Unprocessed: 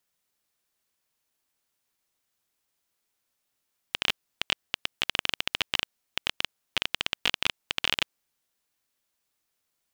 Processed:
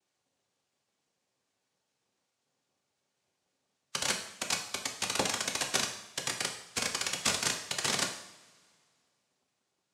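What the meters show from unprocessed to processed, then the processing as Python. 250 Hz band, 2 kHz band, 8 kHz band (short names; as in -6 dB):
+3.5 dB, -4.0 dB, +12.0 dB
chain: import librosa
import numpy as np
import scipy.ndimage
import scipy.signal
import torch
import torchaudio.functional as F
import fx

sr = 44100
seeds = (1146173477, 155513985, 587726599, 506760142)

y = fx.spec_quant(x, sr, step_db=15)
y = scipy.signal.sosfilt(scipy.signal.butter(2, 3000.0, 'lowpass', fs=sr, output='sos'), y)
y = fx.small_body(y, sr, hz=(310.0, 570.0), ring_ms=85, db=16)
y = fx.noise_vocoder(y, sr, seeds[0], bands=2)
y = fx.rev_double_slope(y, sr, seeds[1], early_s=0.68, late_s=2.2, knee_db=-19, drr_db=2.0)
y = y * 10.0 ** (-1.5 / 20.0)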